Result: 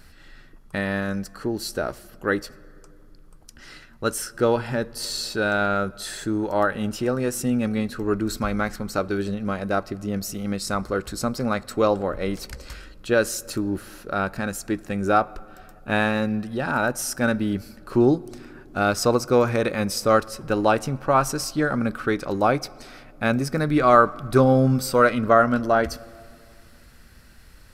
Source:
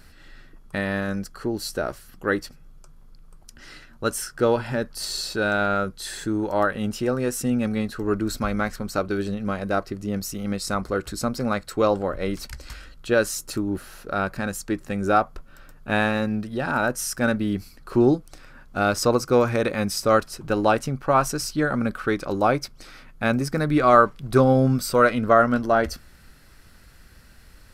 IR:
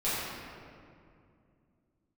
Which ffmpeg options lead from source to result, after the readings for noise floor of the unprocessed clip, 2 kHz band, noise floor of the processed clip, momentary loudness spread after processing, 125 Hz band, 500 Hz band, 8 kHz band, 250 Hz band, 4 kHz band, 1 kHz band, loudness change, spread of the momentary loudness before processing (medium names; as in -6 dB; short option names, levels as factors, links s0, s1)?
-49 dBFS, 0.0 dB, -49 dBFS, 11 LU, +0.5 dB, 0.0 dB, 0.0 dB, +0.5 dB, 0.0 dB, 0.0 dB, 0.0 dB, 11 LU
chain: -filter_complex "[0:a]asplit=2[s0][s1];[1:a]atrim=start_sample=2205[s2];[s1][s2]afir=irnorm=-1:irlink=0,volume=0.0299[s3];[s0][s3]amix=inputs=2:normalize=0"